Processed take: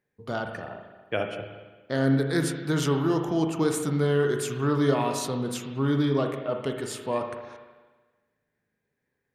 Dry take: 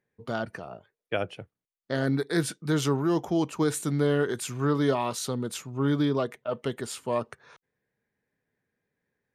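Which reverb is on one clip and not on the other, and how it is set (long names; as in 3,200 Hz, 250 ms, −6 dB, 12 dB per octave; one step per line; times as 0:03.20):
spring reverb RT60 1.3 s, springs 37/56 ms, chirp 75 ms, DRR 4 dB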